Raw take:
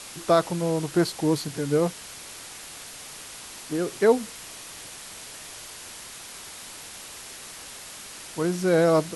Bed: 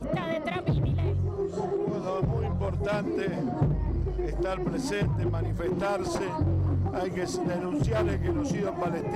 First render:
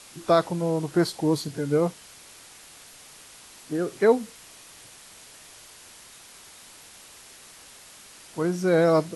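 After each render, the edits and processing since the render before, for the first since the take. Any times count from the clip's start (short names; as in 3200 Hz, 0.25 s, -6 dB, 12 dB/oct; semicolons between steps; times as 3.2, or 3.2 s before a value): noise print and reduce 7 dB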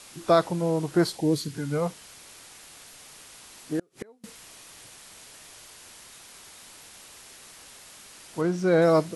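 1.16–1.89 bell 1400 Hz -> 280 Hz -15 dB 0.58 oct; 3.79–4.24 flipped gate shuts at -21 dBFS, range -35 dB; 8.41–8.82 air absorption 50 m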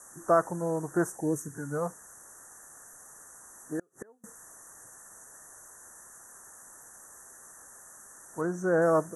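Chebyshev band-stop 1800–6000 Hz, order 5; low shelf 440 Hz -8 dB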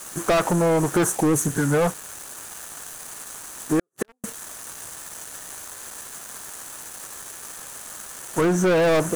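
sample leveller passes 5; compressor, threshold -17 dBFS, peak gain reduction 4 dB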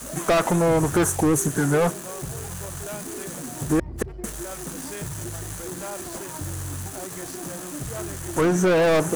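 add bed -7 dB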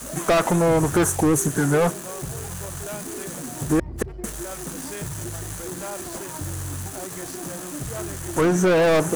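gain +1 dB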